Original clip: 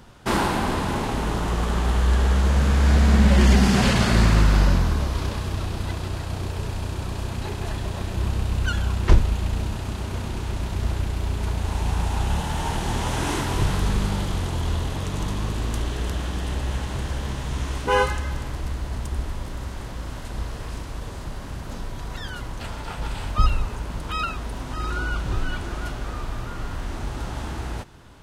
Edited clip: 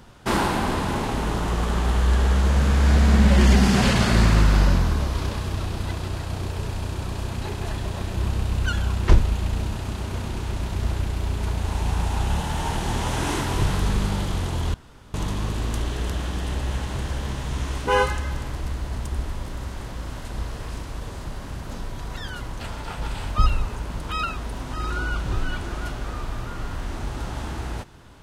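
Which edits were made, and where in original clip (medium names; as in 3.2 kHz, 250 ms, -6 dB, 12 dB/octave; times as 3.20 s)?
14.74–15.14 s: room tone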